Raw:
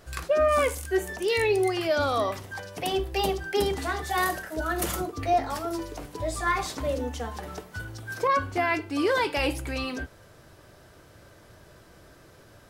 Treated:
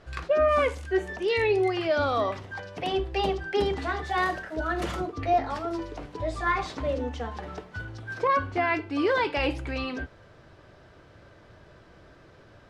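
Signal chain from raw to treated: low-pass 3.8 kHz 12 dB/octave

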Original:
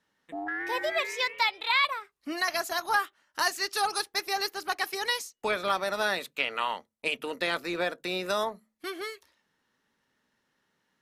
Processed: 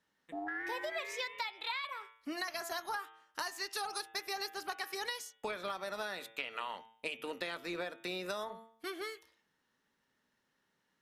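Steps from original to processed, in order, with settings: de-hum 112.7 Hz, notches 33; compression 10:1, threshold -31 dBFS, peak gain reduction 11.5 dB; trim -4 dB

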